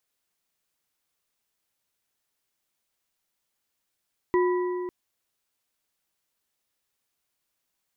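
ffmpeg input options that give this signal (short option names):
-f lavfi -i "aevalsrc='0.119*pow(10,-3*t/2.78)*sin(2*PI*360*t)+0.0531*pow(10,-3*t/2.051)*sin(2*PI*992.5*t)+0.0237*pow(10,-3*t/1.676)*sin(2*PI*1945.4*t)':d=0.55:s=44100"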